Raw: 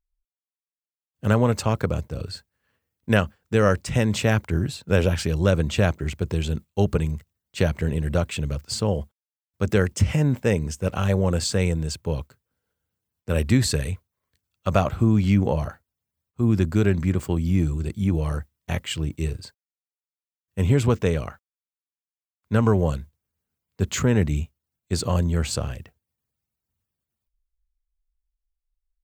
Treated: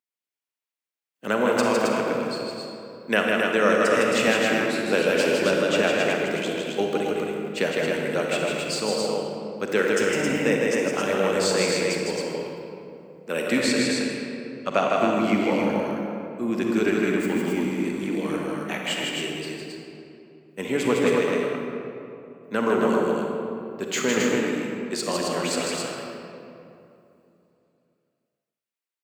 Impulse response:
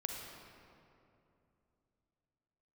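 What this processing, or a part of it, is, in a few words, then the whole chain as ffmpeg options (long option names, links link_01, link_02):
stadium PA: -filter_complex "[0:a]asettb=1/sr,asplit=3[link_01][link_02][link_03];[link_01]atrim=end=13.574[link_04];[link_02]atrim=start=13.57:end=14.96,asetpts=PTS-STARTPTS,afade=type=in:duration=0.004:curve=qsin,afade=type=out:start_time=1.386:duration=0.004:curve=qsin,lowpass=8100[link_05];[link_03]atrim=start=14.956[link_06];[link_04][link_05]acrossfade=duration=0.004:curve1=hsin:curve2=qsin[link_07];[link_07][link_06]acrossfade=duration=0.004:curve1=qsin:curve2=hsin,highpass=frequency=240:width=0.5412,highpass=frequency=240:width=1.3066,equalizer=frequency=2200:width_type=o:width=1.1:gain=5,aecho=1:1:157.4|268.2:0.631|0.631[link_08];[1:a]atrim=start_sample=2205[link_09];[link_08][link_09]afir=irnorm=-1:irlink=0"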